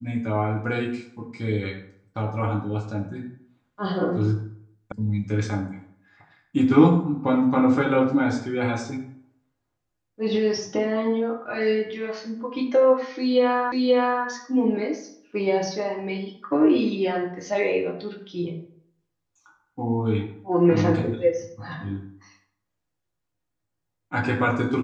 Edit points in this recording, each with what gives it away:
4.92 sound cut off
13.72 repeat of the last 0.53 s

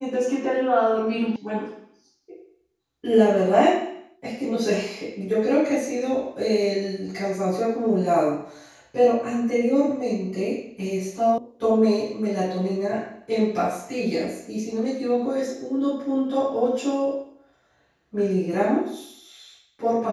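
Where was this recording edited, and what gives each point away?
1.36 sound cut off
11.38 sound cut off

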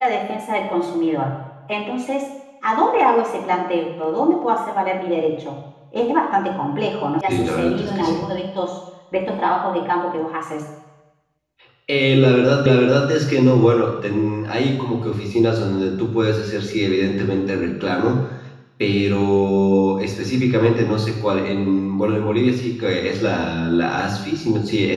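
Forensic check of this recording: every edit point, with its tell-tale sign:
7.21 sound cut off
12.66 repeat of the last 0.44 s

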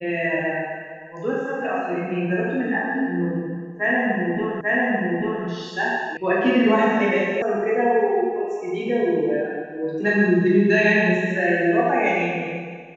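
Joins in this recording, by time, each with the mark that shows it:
4.61 repeat of the last 0.84 s
6.17 sound cut off
7.42 sound cut off

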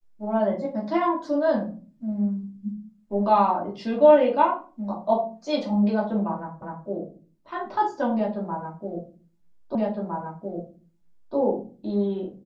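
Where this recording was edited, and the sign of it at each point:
6.62 repeat of the last 0.25 s
9.75 repeat of the last 1.61 s

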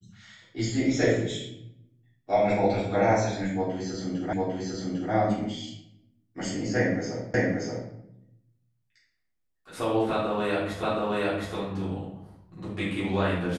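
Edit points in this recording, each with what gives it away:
4.33 repeat of the last 0.8 s
7.34 repeat of the last 0.58 s
10.83 repeat of the last 0.72 s

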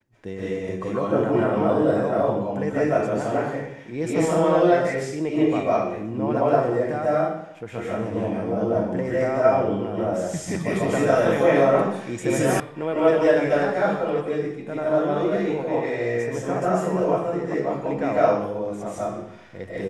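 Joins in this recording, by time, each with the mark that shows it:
12.6 sound cut off

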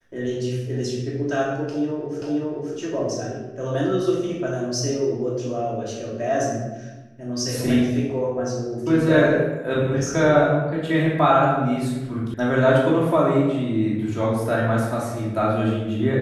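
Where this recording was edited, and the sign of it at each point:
2.22 repeat of the last 0.53 s
12.34 sound cut off

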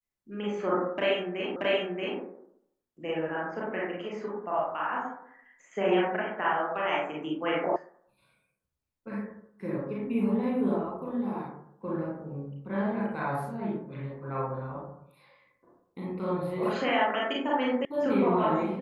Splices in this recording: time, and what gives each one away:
1.56 repeat of the last 0.63 s
7.76 sound cut off
17.85 sound cut off

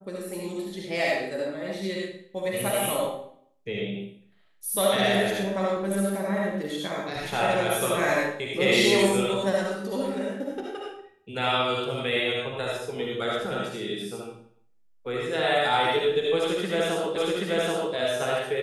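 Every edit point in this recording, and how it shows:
17.16 repeat of the last 0.78 s

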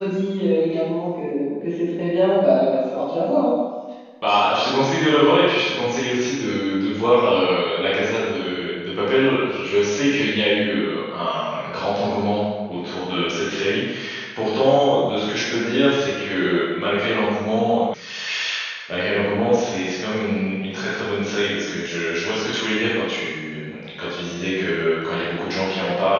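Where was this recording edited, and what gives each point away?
17.94 sound cut off

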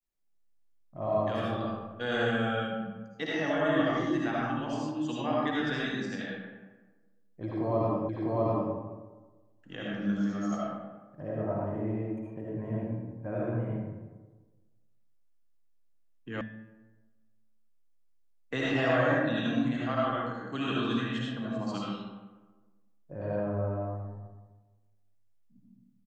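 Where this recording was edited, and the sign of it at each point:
8.09 repeat of the last 0.65 s
16.41 sound cut off

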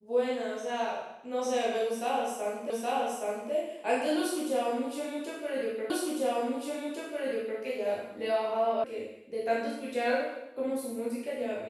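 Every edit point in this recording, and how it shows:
2.7 repeat of the last 0.82 s
5.9 repeat of the last 1.7 s
8.84 sound cut off

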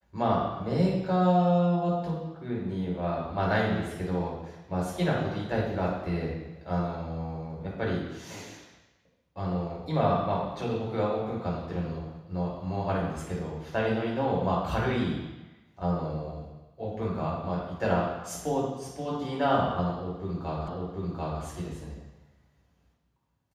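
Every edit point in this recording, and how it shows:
20.68 repeat of the last 0.74 s

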